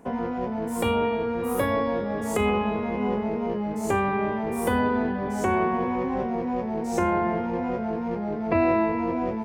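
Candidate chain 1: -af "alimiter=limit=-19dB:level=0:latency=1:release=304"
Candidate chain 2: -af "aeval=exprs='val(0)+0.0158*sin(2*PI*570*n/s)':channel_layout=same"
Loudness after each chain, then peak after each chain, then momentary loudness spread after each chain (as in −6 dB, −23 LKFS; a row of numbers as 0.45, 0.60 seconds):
−29.0, −26.0 LKFS; −19.0, −10.5 dBFS; 2, 5 LU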